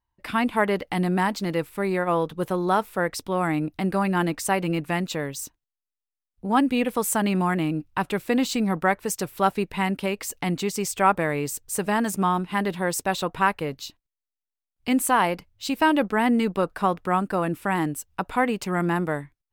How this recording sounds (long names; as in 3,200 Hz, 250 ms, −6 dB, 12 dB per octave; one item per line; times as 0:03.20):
background noise floor −88 dBFS
spectral slope −5.0 dB per octave